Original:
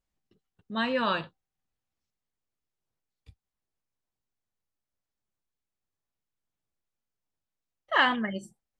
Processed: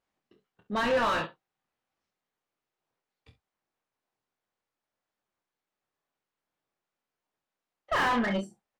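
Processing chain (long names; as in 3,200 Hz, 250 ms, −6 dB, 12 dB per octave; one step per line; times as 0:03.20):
ambience of single reflections 25 ms −7 dB, 51 ms −16 dB, 66 ms −16.5 dB
mid-hump overdrive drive 32 dB, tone 1,200 Hz, clips at −8 dBFS
expander for the loud parts 1.5 to 1, over −28 dBFS
level −7.5 dB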